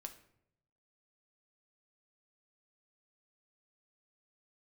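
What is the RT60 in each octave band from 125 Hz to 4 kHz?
1.1, 0.85, 0.85, 0.65, 0.60, 0.45 seconds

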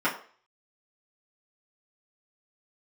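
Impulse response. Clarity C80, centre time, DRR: 14.0 dB, 20 ms, −10.0 dB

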